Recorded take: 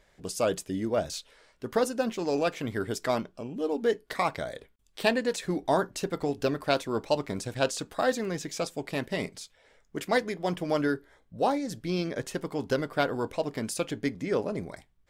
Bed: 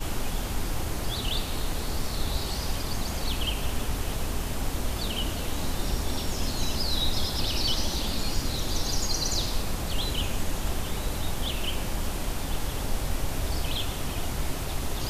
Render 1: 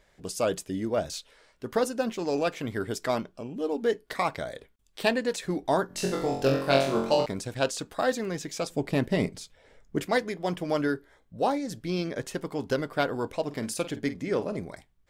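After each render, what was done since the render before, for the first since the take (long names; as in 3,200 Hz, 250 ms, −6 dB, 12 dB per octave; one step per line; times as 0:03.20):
0:05.87–0:07.26: flutter between parallel walls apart 3.8 metres, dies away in 0.59 s
0:08.70–0:10.07: low-shelf EQ 490 Hz +9.5 dB
0:13.44–0:14.59: double-tracking delay 49 ms −13 dB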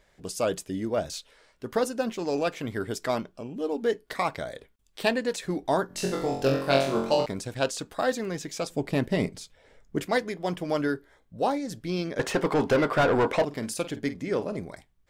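0:12.19–0:13.45: mid-hump overdrive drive 27 dB, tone 1,600 Hz, clips at −13 dBFS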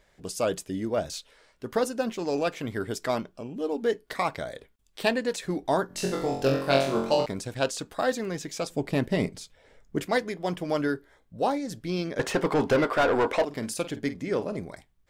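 0:12.84–0:13.50: parametric band 150 Hz −12 dB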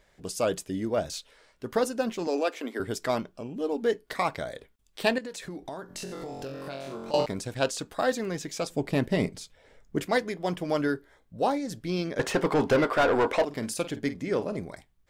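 0:02.27–0:02.80: elliptic high-pass filter 240 Hz
0:05.18–0:07.14: downward compressor 8 to 1, threshold −34 dBFS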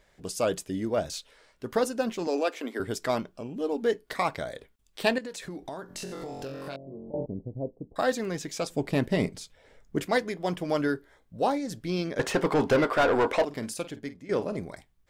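0:06.76–0:07.96: Gaussian smoothing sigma 17 samples
0:13.42–0:14.29: fade out, to −14 dB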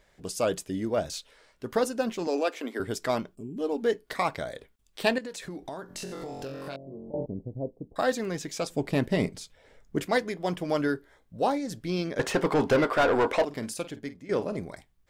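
0:03.35–0:03.57: gain on a spectral selection 440–6,500 Hz −21 dB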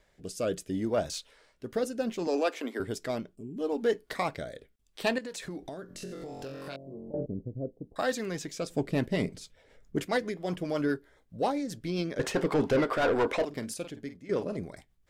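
rotating-speaker cabinet horn 0.7 Hz, later 7.5 Hz, at 0:08.36
soft clipping −14.5 dBFS, distortion −25 dB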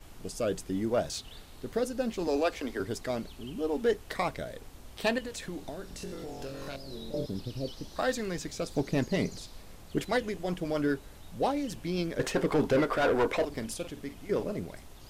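mix in bed −20 dB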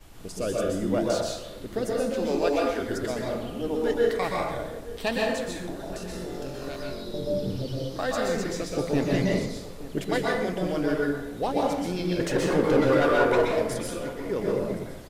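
slap from a distant wall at 150 metres, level −17 dB
dense smooth reverb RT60 0.92 s, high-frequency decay 0.55×, pre-delay 110 ms, DRR −3 dB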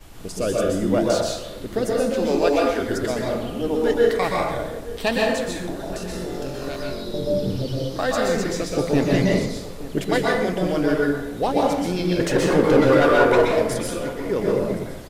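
level +5.5 dB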